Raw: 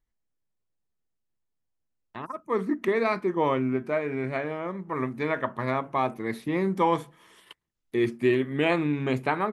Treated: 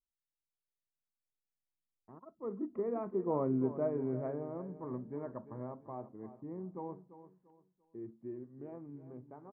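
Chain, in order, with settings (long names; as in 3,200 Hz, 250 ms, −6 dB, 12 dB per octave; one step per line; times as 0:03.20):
source passing by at 0:03.83, 11 m/s, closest 7 metres
Bessel low-pass filter 660 Hz, order 4
on a send: repeating echo 343 ms, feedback 31%, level −13.5 dB
on the sum: level −4 dB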